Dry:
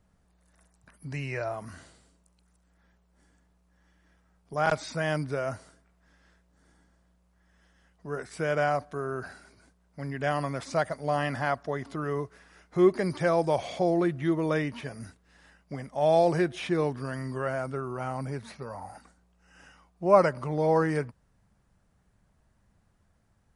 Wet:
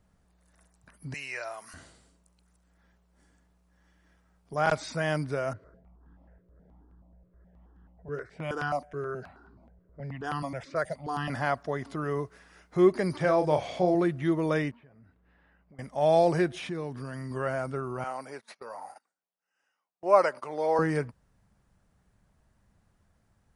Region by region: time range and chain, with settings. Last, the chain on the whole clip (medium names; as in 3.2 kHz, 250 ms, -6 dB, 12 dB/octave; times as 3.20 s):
1.14–1.74 s: high-pass 960 Hz 6 dB/octave + tilt EQ +2 dB/octave
5.53–11.30 s: level-controlled noise filter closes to 670 Hz, open at -25 dBFS + upward compressor, threshold -44 dBFS + stepped phaser 9.4 Hz 220–2200 Hz
13.16–13.95 s: high-pass 48 Hz + treble shelf 6.1 kHz -8 dB + doubling 33 ms -7.5 dB
14.71–15.79 s: compression 3:1, threshold -58 dBFS + distance through air 490 m
16.53–17.31 s: high-pass 170 Hz 6 dB/octave + tone controls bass +7 dB, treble +1 dB + compression 2:1, threshold -37 dBFS
18.04–20.79 s: high-pass 460 Hz + gate -48 dBFS, range -22 dB
whole clip: none